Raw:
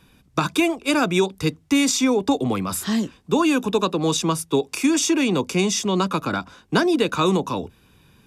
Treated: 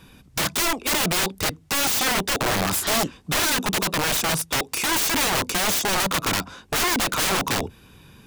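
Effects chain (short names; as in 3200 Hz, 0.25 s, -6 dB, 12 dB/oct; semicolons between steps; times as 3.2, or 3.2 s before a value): in parallel at -1 dB: compressor 5:1, threshold -27 dBFS, peak gain reduction 12 dB; on the sum: wrapped overs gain 17 dB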